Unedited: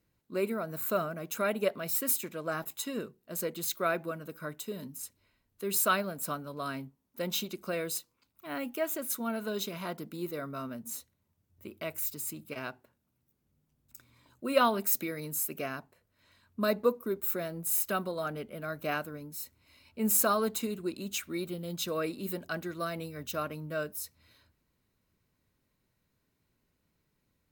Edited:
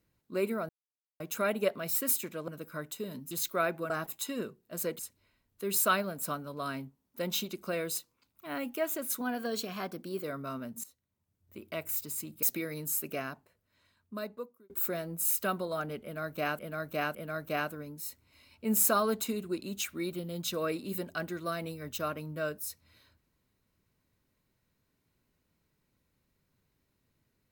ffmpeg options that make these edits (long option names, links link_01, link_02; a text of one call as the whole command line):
ffmpeg -i in.wav -filter_complex "[0:a]asplit=14[link_01][link_02][link_03][link_04][link_05][link_06][link_07][link_08][link_09][link_10][link_11][link_12][link_13][link_14];[link_01]atrim=end=0.69,asetpts=PTS-STARTPTS,afade=type=out:start_time=0.686:duration=0.004:curve=hsin[link_15];[link_02]atrim=start=0.69:end=1.2,asetpts=PTS-STARTPTS,volume=0[link_16];[link_03]atrim=start=1.2:end=2.482,asetpts=PTS-STARTPTS,afade=type=in:duration=0.004:curve=hsin[link_17];[link_04]atrim=start=4.158:end=4.992[link_18];[link_05]atrim=start=3.568:end=4.162[link_19];[link_06]atrim=start=2.478:end=3.572[link_20];[link_07]atrim=start=4.988:end=9.214[link_21];[link_08]atrim=start=9.21:end=10.33,asetpts=PTS-STARTPTS,asetrate=48069,aresample=44100[link_22];[link_09]atrim=start=10.326:end=10.93,asetpts=PTS-STARTPTS,afade=type=out:start_time=0.6:duration=0.004:curve=hsin:silence=0.141254[link_23];[link_10]atrim=start=10.93:end=12.522,asetpts=PTS-STARTPTS,afade=type=in:duration=0.92:silence=0.141254[link_24];[link_11]atrim=start=14.888:end=17.16,asetpts=PTS-STARTPTS,afade=type=out:start_time=0.742:duration=1.53[link_25];[link_12]atrim=start=17.16:end=19.052,asetpts=PTS-STARTPTS,afade=type=in:duration=0.004:curve=hsin[link_26];[link_13]atrim=start=18.488:end=19.052[link_27];[link_14]atrim=start=18.488[link_28];[link_15][link_16][link_17]concat=n=3:v=0:a=1[link_29];[link_29][link_18]acrossfade=duration=0.004:curve1=hsin:curve2=hsin[link_30];[link_30][link_19]acrossfade=duration=0.004:curve1=hsin:curve2=hsin[link_31];[link_31][link_20]acrossfade=duration=0.004:curve1=hsin:curve2=hsin[link_32];[link_32][link_21]acrossfade=duration=0.004:curve1=hsin:curve2=hsin[link_33];[link_33][link_22]acrossfade=duration=0.004:curve1=hsin:curve2=hsin[link_34];[link_23][link_24]concat=n=2:v=0:a=1[link_35];[link_34][link_35]acrossfade=duration=0.004:curve1=hsin:curve2=hsin[link_36];[link_25][link_26]concat=n=2:v=0:a=1[link_37];[link_36][link_37]acrossfade=duration=0.004:curve1=hsin:curve2=hsin[link_38];[link_38][link_27]acrossfade=duration=0.004:curve1=hsin:curve2=hsin[link_39];[link_39][link_28]acrossfade=duration=0.004:curve1=hsin:curve2=hsin" out.wav